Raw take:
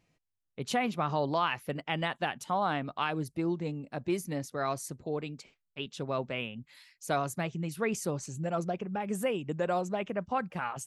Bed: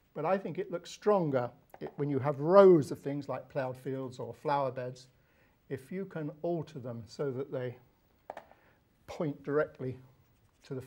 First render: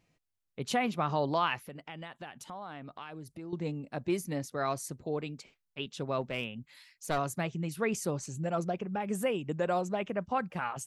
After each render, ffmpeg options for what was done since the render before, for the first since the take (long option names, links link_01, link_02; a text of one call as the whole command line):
ffmpeg -i in.wav -filter_complex "[0:a]asettb=1/sr,asplit=3[link_01][link_02][link_03];[link_01]atrim=end=1.644[link_04];[link_02]atrim=start=1.64:end=3.53,asetpts=PTS-STARTPTS,afade=type=in:duration=0.004:curve=qsin,afade=type=out:start_time=1.886:duration=0.004:curve=qsin,acompressor=threshold=-44dB:ratio=3:attack=3.2:release=140:knee=1:detection=peak[link_05];[link_03]atrim=start=3.526[link_06];[link_04][link_05]acrossfade=duration=0.004:curve1=hsin:curve2=qsin[link_07];[link_07][link_06]acrossfade=duration=0.004:curve1=qsin:curve2=hsin,asplit=3[link_08][link_09][link_10];[link_08]afade=type=out:start_time=6.2:duration=0.02[link_11];[link_09]aeval=exprs='clip(val(0),-1,0.0168)':channel_layout=same,afade=type=in:start_time=6.2:duration=0.02,afade=type=out:start_time=7.17:duration=0.02[link_12];[link_10]afade=type=in:start_time=7.17:duration=0.02[link_13];[link_11][link_12][link_13]amix=inputs=3:normalize=0" out.wav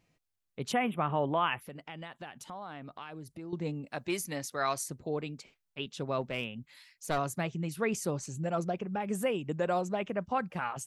ffmpeg -i in.wav -filter_complex "[0:a]asplit=3[link_01][link_02][link_03];[link_01]afade=type=out:start_time=0.71:duration=0.02[link_04];[link_02]asuperstop=centerf=5400:order=12:qfactor=1.1,afade=type=in:start_time=0.71:duration=0.02,afade=type=out:start_time=1.6:duration=0.02[link_05];[link_03]afade=type=in:start_time=1.6:duration=0.02[link_06];[link_04][link_05][link_06]amix=inputs=3:normalize=0,asettb=1/sr,asplit=3[link_07][link_08][link_09];[link_07]atrim=end=3.864[link_10];[link_08]atrim=start=3.86:end=4.84,asetpts=PTS-STARTPTS,afade=type=in:duration=0.004:curve=qsin,afade=type=out:start_time=0.976:duration=0.004:curve=qsin,tiltshelf=frequency=690:gain=-6[link_11];[link_09]atrim=start=4.836[link_12];[link_10][link_11]acrossfade=duration=0.004:curve1=hsin:curve2=qsin[link_13];[link_13][link_12]acrossfade=duration=0.004:curve1=qsin:curve2=hsin" out.wav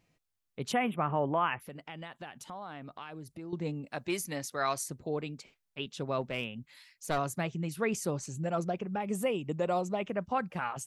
ffmpeg -i in.wav -filter_complex "[0:a]asettb=1/sr,asplit=3[link_01][link_02][link_03];[link_01]atrim=end=0.964[link_04];[link_02]atrim=start=0.96:end=1.6,asetpts=PTS-STARTPTS,afade=type=in:duration=0.004:curve=qsin,afade=type=out:start_time=0.636:duration=0.004:curve=qsin,lowpass=frequency=2600:width=0.5412,lowpass=frequency=2600:width=1.3066[link_05];[link_03]atrim=start=1.596[link_06];[link_04][link_05]acrossfade=duration=0.004:curve1=hsin:curve2=qsin[link_07];[link_07][link_06]acrossfade=duration=0.004:curve1=qsin:curve2=hsin,asettb=1/sr,asplit=3[link_08][link_09][link_10];[link_08]atrim=end=9.014[link_11];[link_09]atrim=start=9.01:end=10.03,asetpts=PTS-STARTPTS,afade=type=in:duration=0.004:curve=qsin,afade=type=out:start_time=1.016:duration=0.004:curve=qsin,equalizer=frequency=1600:width=6.7:gain=-12[link_12];[link_10]atrim=start=10.026[link_13];[link_11][link_12]acrossfade=duration=0.004:curve1=hsin:curve2=qsin[link_14];[link_14][link_13]acrossfade=duration=0.004:curve1=qsin:curve2=hsin" out.wav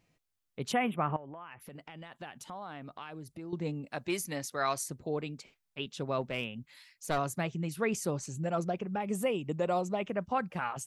ffmpeg -i in.wav -filter_complex "[0:a]asettb=1/sr,asplit=3[link_01][link_02][link_03];[link_01]atrim=end=1.164[link_04];[link_02]atrim=start=1.16:end=2.12,asetpts=PTS-STARTPTS,afade=type=in:duration=0.004:curve=qsin,afade=type=out:start_time=0.956:duration=0.004:curve=qsin,acompressor=threshold=-42dB:ratio=12:attack=3.2:release=140:knee=1:detection=peak[link_05];[link_03]atrim=start=2.116[link_06];[link_04][link_05]acrossfade=duration=0.004:curve1=hsin:curve2=qsin[link_07];[link_07][link_06]acrossfade=duration=0.004:curve1=qsin:curve2=hsin" out.wav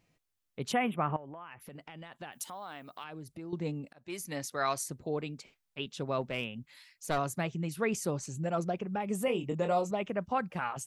ffmpeg -i in.wav -filter_complex "[0:a]asettb=1/sr,asplit=3[link_01][link_02][link_03];[link_01]atrim=end=2.324[link_04];[link_02]atrim=start=2.32:end=3.04,asetpts=PTS-STARTPTS,afade=type=in:duration=0.004:curve=qsin,afade=type=out:start_time=0.716:duration=0.004:curve=qsin,aemphasis=mode=production:type=bsi[link_05];[link_03]atrim=start=3.036[link_06];[link_04][link_05]acrossfade=duration=0.004:curve1=hsin:curve2=qsin[link_07];[link_07][link_06]acrossfade=duration=0.004:curve1=qsin:curve2=hsin,asettb=1/sr,asplit=3[link_08][link_09][link_10];[link_08]atrim=end=9.254[link_11];[link_09]atrim=start=9.25:end=9.91,asetpts=PTS-STARTPTS,afade=type=in:duration=0.004:curve=qsin,afade=type=out:start_time=0.656:duration=0.004:curve=qsin,asplit=2[link_12][link_13];[link_13]adelay=24,volume=-6dB[link_14];[link_12][link_14]amix=inputs=2:normalize=0,atrim=end_sample=29106[link_15];[link_10]atrim=start=9.906[link_16];[link_11][link_15]acrossfade=duration=0.004:curve1=hsin:curve2=qsin[link_17];[link_17][link_16]acrossfade=duration=0.004:curve1=qsin:curve2=hsin,asplit=2[link_18][link_19];[link_18]atrim=end=3.93,asetpts=PTS-STARTPTS,afade=type=out:start_time=3.926:duration=0.004:curve=hsin[link_20];[link_19]atrim=start=3.93,asetpts=PTS-STARTPTS,afade=type=in:duration=0.46[link_21];[link_20][link_21]concat=n=2:v=0:a=1" out.wav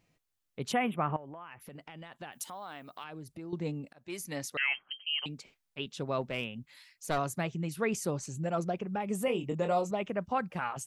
ffmpeg -i in.wav -filter_complex "[0:a]asettb=1/sr,asplit=3[link_01][link_02][link_03];[link_01]atrim=end=4.574[link_04];[link_02]atrim=start=4.57:end=5.26,asetpts=PTS-STARTPTS,afade=type=in:duration=0.004:curve=qsin,afade=type=out:start_time=0.686:duration=0.004:curve=qsin,lowpass=frequency=2800:width_type=q:width=0.5098,lowpass=frequency=2800:width_type=q:width=0.6013,lowpass=frequency=2800:width_type=q:width=0.9,lowpass=frequency=2800:width_type=q:width=2.563,afreqshift=-3300[link_05];[link_03]atrim=start=5.256[link_06];[link_04][link_05]acrossfade=duration=0.004:curve1=hsin:curve2=qsin[link_07];[link_07][link_06]acrossfade=duration=0.004:curve1=qsin:curve2=hsin" out.wav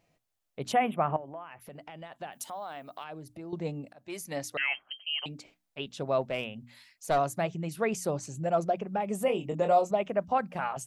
ffmpeg -i in.wav -af "equalizer=frequency=660:width_type=o:width=0.67:gain=8,bandreject=frequency=60:width_type=h:width=6,bandreject=frequency=120:width_type=h:width=6,bandreject=frequency=180:width_type=h:width=6,bandreject=frequency=240:width_type=h:width=6,bandreject=frequency=300:width_type=h:width=6" out.wav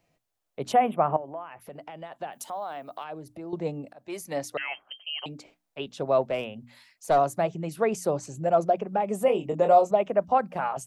ffmpeg -i in.wav -filter_complex "[0:a]acrossover=split=310|1200|3400[link_01][link_02][link_03][link_04];[link_02]dynaudnorm=framelen=200:gausssize=3:maxgain=6dB[link_05];[link_03]alimiter=level_in=6.5dB:limit=-24dB:level=0:latency=1:release=290,volume=-6.5dB[link_06];[link_01][link_05][link_06][link_04]amix=inputs=4:normalize=0" out.wav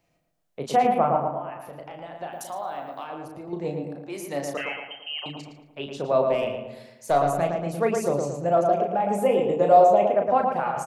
ffmpeg -i in.wav -filter_complex "[0:a]asplit=2[link_01][link_02];[link_02]adelay=35,volume=-6dB[link_03];[link_01][link_03]amix=inputs=2:normalize=0,asplit=2[link_04][link_05];[link_05]adelay=113,lowpass=frequency=2100:poles=1,volume=-3.5dB,asplit=2[link_06][link_07];[link_07]adelay=113,lowpass=frequency=2100:poles=1,volume=0.5,asplit=2[link_08][link_09];[link_09]adelay=113,lowpass=frequency=2100:poles=1,volume=0.5,asplit=2[link_10][link_11];[link_11]adelay=113,lowpass=frequency=2100:poles=1,volume=0.5,asplit=2[link_12][link_13];[link_13]adelay=113,lowpass=frequency=2100:poles=1,volume=0.5,asplit=2[link_14][link_15];[link_15]adelay=113,lowpass=frequency=2100:poles=1,volume=0.5,asplit=2[link_16][link_17];[link_17]adelay=113,lowpass=frequency=2100:poles=1,volume=0.5[link_18];[link_04][link_06][link_08][link_10][link_12][link_14][link_16][link_18]amix=inputs=8:normalize=0" out.wav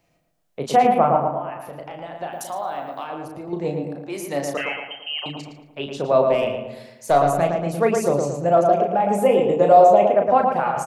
ffmpeg -i in.wav -af "volume=4.5dB,alimiter=limit=-3dB:level=0:latency=1" out.wav